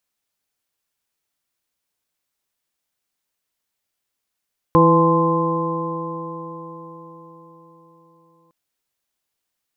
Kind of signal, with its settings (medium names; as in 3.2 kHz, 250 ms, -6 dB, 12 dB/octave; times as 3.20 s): stretched partials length 3.76 s, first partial 164 Hz, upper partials 0/0.5/-19.5/-8.5/2 dB, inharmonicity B 0.0032, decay 4.77 s, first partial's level -15 dB